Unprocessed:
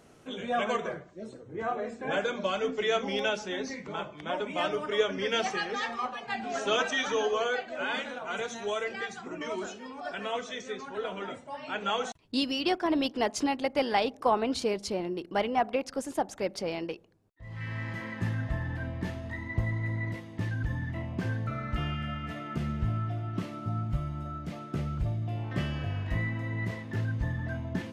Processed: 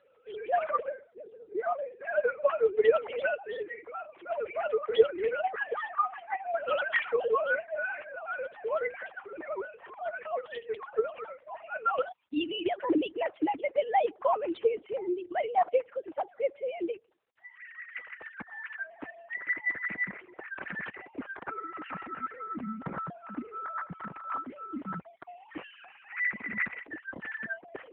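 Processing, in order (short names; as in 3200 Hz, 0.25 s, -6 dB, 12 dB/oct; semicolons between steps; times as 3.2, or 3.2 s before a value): sine-wave speech; AMR-NB 7.95 kbps 8000 Hz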